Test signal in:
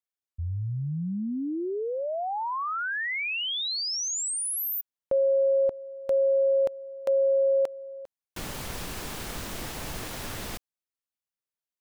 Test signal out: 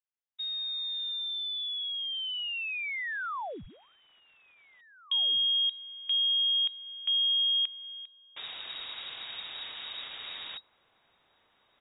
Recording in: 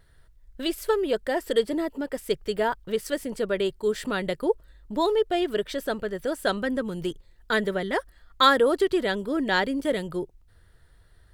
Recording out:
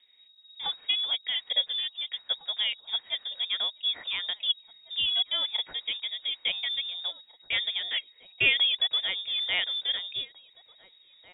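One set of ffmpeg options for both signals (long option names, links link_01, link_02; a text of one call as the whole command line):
ffmpeg -i in.wav -filter_complex "[0:a]acrusher=bits=6:mode=log:mix=0:aa=0.000001,lowpass=frequency=3200:width_type=q:width=0.5098,lowpass=frequency=3200:width_type=q:width=0.6013,lowpass=frequency=3200:width_type=q:width=0.9,lowpass=frequency=3200:width_type=q:width=2.563,afreqshift=-3800,asplit=2[link_01][link_02];[link_02]adelay=1749,volume=-15dB,highshelf=frequency=4000:gain=-39.4[link_03];[link_01][link_03]amix=inputs=2:normalize=0,volume=-4.5dB" out.wav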